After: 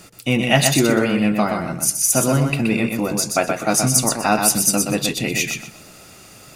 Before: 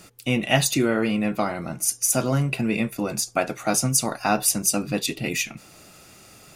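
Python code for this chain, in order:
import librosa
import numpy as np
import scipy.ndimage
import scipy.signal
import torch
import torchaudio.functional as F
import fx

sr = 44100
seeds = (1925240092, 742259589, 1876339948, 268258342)

y = fx.echo_feedback(x, sr, ms=124, feedback_pct=22, wet_db=-5)
y = y * 10.0 ** (4.0 / 20.0)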